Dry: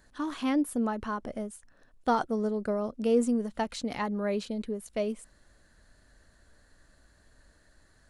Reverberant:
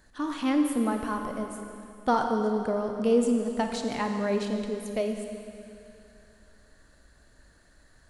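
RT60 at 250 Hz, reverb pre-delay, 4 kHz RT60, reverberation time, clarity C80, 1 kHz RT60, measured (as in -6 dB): 2.7 s, 29 ms, 2.6 s, 2.7 s, 5.5 dB, 2.7 s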